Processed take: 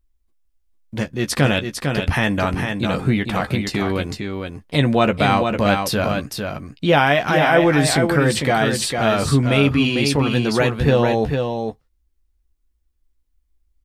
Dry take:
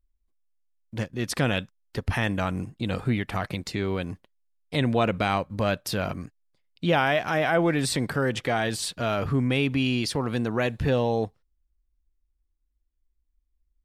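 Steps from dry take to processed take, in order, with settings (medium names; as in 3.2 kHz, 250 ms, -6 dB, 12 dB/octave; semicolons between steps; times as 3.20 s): doubling 14 ms -8 dB; delay 452 ms -5.5 dB; trim +6.5 dB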